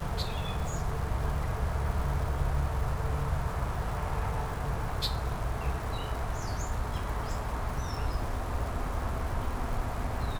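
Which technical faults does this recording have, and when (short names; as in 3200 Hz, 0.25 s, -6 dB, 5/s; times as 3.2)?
crackle 350/s -39 dBFS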